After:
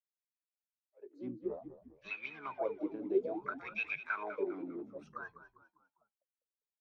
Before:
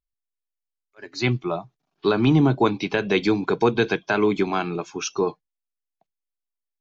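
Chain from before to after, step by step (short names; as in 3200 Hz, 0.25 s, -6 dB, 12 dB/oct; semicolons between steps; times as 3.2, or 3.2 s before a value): harmoniser +7 st -7 dB; wah 0.59 Hz 290–2600 Hz, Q 18; frequency-shifting echo 0.2 s, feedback 42%, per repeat -58 Hz, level -12.5 dB; gain -1 dB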